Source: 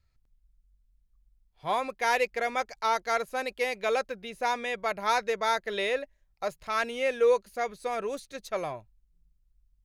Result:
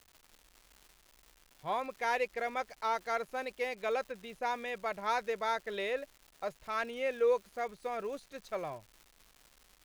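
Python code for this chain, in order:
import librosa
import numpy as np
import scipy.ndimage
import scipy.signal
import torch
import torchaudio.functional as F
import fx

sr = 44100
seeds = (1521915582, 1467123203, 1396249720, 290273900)

y = fx.high_shelf(x, sr, hz=4200.0, db=-8.0)
y = fx.dmg_crackle(y, sr, seeds[0], per_s=380.0, level_db=-41.0)
y = y * 10.0 ** (-5.5 / 20.0)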